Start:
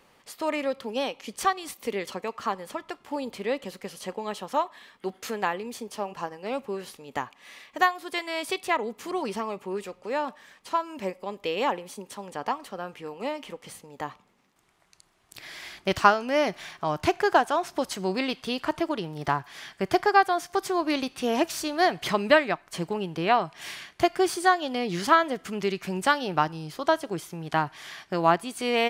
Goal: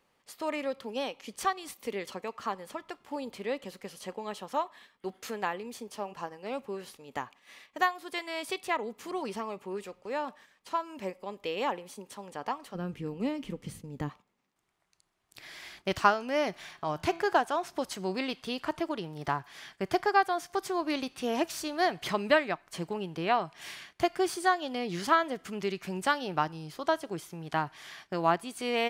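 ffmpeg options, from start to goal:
-filter_complex "[0:a]agate=range=0.447:threshold=0.00398:ratio=16:detection=peak,asplit=3[s0][s1][s2];[s0]afade=t=out:st=12.74:d=0.02[s3];[s1]asubboost=boost=8.5:cutoff=250,afade=t=in:st=12.74:d=0.02,afade=t=out:st=14.08:d=0.02[s4];[s2]afade=t=in:st=14.08:d=0.02[s5];[s3][s4][s5]amix=inputs=3:normalize=0,asettb=1/sr,asplit=3[s6][s7][s8];[s6]atrim=end=16.674[s9];[s7]atrim=start=16.67:end=17.34,asetpts=PTS-STARTPTS,afade=t=in:d=0.004:c=qsin,afade=t=out:st=0.666:d=0.004:c=qsin,bandreject=f=166.9:t=h:w=4,bandreject=f=333.8:t=h:w=4,bandreject=f=500.7:t=h:w=4,bandreject=f=667.6:t=h:w=4,bandreject=f=834.5:t=h:w=4,bandreject=f=1001.4:t=h:w=4,bandreject=f=1168.3:t=h:w=4,bandreject=f=1335.2:t=h:w=4,bandreject=f=1502.1:t=h:w=4,bandreject=f=1669:t=h:w=4,bandreject=f=1835.9:t=h:w=4,bandreject=f=2002.8:t=h:w=4,bandreject=f=2169.7:t=h:w=4,bandreject=f=2336.6:t=h:w=4,bandreject=f=2503.5:t=h:w=4,bandreject=f=2670.4:t=h:w=4,bandreject=f=2837.3:t=h:w=4,bandreject=f=3004.2:t=h:w=4,bandreject=f=3171.1:t=h:w=4,bandreject=f=3338:t=h:w=4,bandreject=f=3504.9:t=h:w=4,bandreject=f=3671.8:t=h:w=4,bandreject=f=3838.7:t=h:w=4,bandreject=f=4005.6:t=h:w=4,bandreject=f=4172.5:t=h:w=4,bandreject=f=4339.4:t=h:w=4,bandreject=f=4506.3:t=h:w=4,bandreject=f=4673.2:t=h:w=4[s10];[s8]atrim=start=17.336[s11];[s9][s10]acrossfade=d=0.004:c1=hsin:c2=qsin[s12];[s12][s11]acrossfade=d=0.004:c1=qsin:c2=hsin,volume=0.562"

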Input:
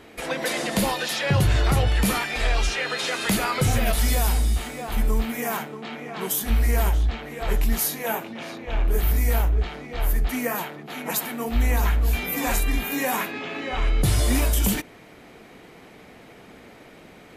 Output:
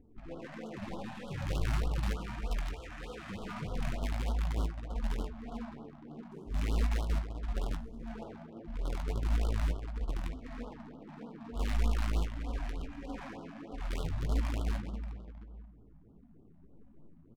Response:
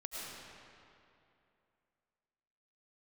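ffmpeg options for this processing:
-filter_complex "[0:a]afwtdn=0.0251,bandreject=f=60:t=h:w=6,bandreject=f=120:t=h:w=6,bandreject=f=180:t=h:w=6,bandreject=f=240:t=h:w=6,aecho=1:1:347:0.168[s0];[1:a]atrim=start_sample=2205,asetrate=88200,aresample=44100[s1];[s0][s1]afir=irnorm=-1:irlink=0,acrossover=split=410[s2][s3];[s2]acompressor=mode=upward:threshold=0.0251:ratio=2.5[s4];[s4][s3]amix=inputs=2:normalize=0,lowshelf=f=160:g=10,acrusher=bits=2:mode=log:mix=0:aa=0.000001,flanger=delay=4:depth=7.9:regen=29:speed=1.6:shape=sinusoidal,adynamicsmooth=sensitivity=6:basefreq=630,asplit=2[s5][s6];[s6]adelay=18,volume=0.299[s7];[s5][s7]amix=inputs=2:normalize=0,afftfilt=real='re*(1-between(b*sr/1024,370*pow(2100/370,0.5+0.5*sin(2*PI*3.3*pts/sr))/1.41,370*pow(2100/370,0.5+0.5*sin(2*PI*3.3*pts/sr))*1.41))':imag='im*(1-between(b*sr/1024,370*pow(2100/370,0.5+0.5*sin(2*PI*3.3*pts/sr))/1.41,370*pow(2100/370,0.5+0.5*sin(2*PI*3.3*pts/sr))*1.41))':win_size=1024:overlap=0.75,volume=0.376"

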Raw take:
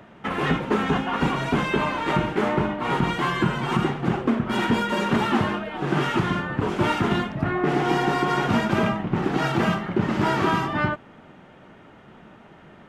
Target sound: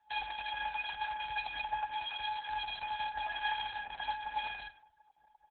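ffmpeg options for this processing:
-filter_complex "[0:a]highpass=f=170:w=0.5412,highpass=f=170:w=1.3066,afftdn=nr=32:nf=-35,lowpass=f=2000:w=0.5412,lowpass=f=2000:w=1.3066,acompressor=threshold=0.0178:ratio=8,afftfilt=real='hypot(re,im)*cos(PI*b)':imag='0':win_size=512:overlap=0.75,afreqshift=20,flanger=delay=5:depth=3.4:regen=35:speed=0.35:shape=sinusoidal,asplit=2[s0][s1];[s1]adelay=238,lowpass=f=1000:p=1,volume=0.141,asplit=2[s2][s3];[s3]adelay=238,lowpass=f=1000:p=1,volume=0.38,asplit=2[s4][s5];[s5]adelay=238,lowpass=f=1000:p=1,volume=0.38[s6];[s0][s2][s4][s6]amix=inputs=4:normalize=0,asetrate=103194,aresample=44100,volume=2.66" -ar 48000 -c:a libopus -b:a 8k

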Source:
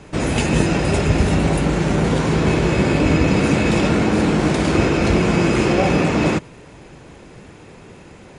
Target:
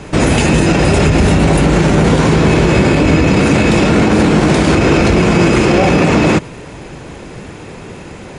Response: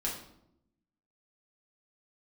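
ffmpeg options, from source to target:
-af "alimiter=level_in=3.98:limit=0.891:release=50:level=0:latency=1,volume=0.891"

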